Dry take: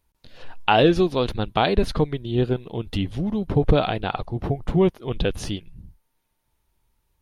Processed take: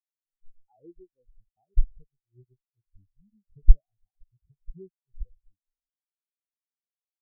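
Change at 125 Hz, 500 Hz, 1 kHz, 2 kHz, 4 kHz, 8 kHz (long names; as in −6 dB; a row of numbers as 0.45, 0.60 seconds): −11.5 dB, −34.5 dB, below −40 dB, below −40 dB, below −40 dB, can't be measured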